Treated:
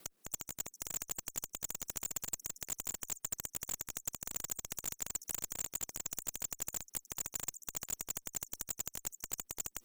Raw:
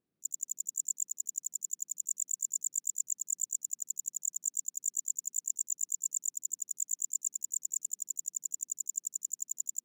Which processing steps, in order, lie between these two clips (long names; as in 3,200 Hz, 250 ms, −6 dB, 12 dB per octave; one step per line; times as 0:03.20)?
slices reordered back to front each 83 ms, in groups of 3
high-pass filter 660 Hz 6 dB per octave
high-shelf EQ 7,000 Hz +5 dB
reversed playback
upward compression, threshold −52 dBFS
reversed playback
gate on every frequency bin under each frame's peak −25 dB strong
volume swells 736 ms
in parallel at −5.5 dB: comparator with hysteresis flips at −57 dBFS
on the sum: every bin compressed towards the loudest bin 2 to 1
level +15 dB